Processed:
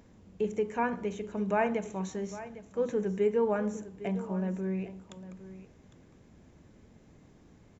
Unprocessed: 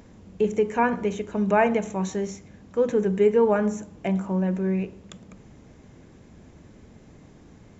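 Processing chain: delay 806 ms -15 dB; trim -8 dB

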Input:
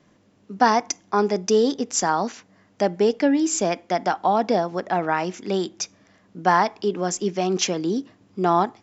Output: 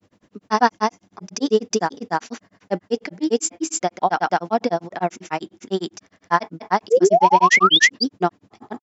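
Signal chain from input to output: painted sound rise, 6.93–7.96 s, 220–5000 Hz -14 dBFS; granulator 97 ms, grains 10 per s, spray 265 ms, pitch spread up and down by 0 st; trim +4 dB

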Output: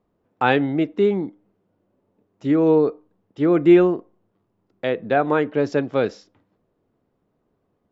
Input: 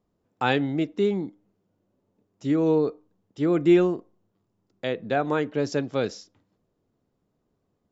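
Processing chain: tone controls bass -4 dB, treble -15 dB; trim +6 dB

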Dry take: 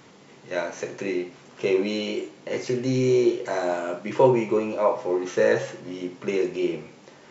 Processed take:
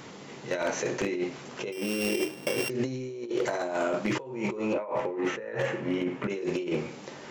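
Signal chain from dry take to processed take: 1.72–2.70 s: sorted samples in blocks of 16 samples; 4.73–6.30 s: resonant high shelf 3.3 kHz -10.5 dB, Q 1.5; compressor with a negative ratio -31 dBFS, ratio -1; wavefolder -19.5 dBFS

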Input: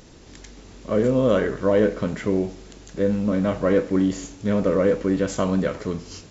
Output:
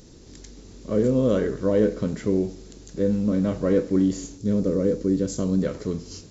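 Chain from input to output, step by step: high-order bell 1.4 kHz -8 dB 2.7 oct, from 4.37 s -15 dB, from 5.60 s -8 dB

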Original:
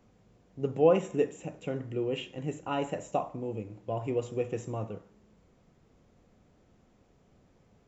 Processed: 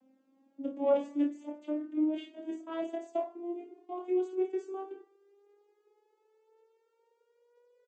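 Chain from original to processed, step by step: vocoder on a note that slides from C4, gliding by +11 st; early reflections 27 ms -5 dB, 52 ms -11.5 dB; trim -3.5 dB

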